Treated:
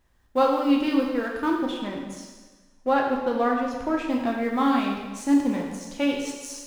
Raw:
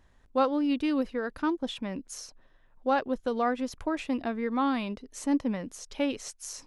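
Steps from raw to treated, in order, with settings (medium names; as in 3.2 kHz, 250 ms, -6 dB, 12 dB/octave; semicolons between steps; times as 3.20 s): companding laws mixed up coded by A; 1.63–4.06 s: treble shelf 4.7 kHz -8 dB; plate-style reverb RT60 1.3 s, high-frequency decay 1×, DRR -1 dB; trim +3 dB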